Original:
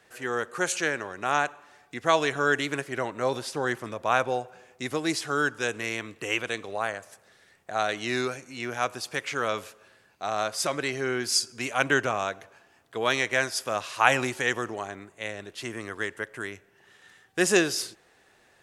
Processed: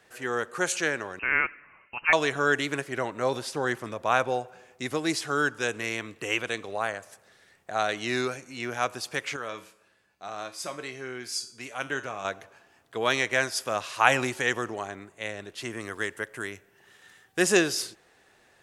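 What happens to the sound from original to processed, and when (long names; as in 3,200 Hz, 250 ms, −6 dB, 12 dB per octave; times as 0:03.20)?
0:01.19–0:02.13: voice inversion scrambler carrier 2,900 Hz
0:09.36–0:12.25: tuned comb filter 64 Hz, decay 0.47 s, harmonics odd, mix 70%
0:15.79–0:17.41: high-shelf EQ 7,700 Hz → 12,000 Hz +8.5 dB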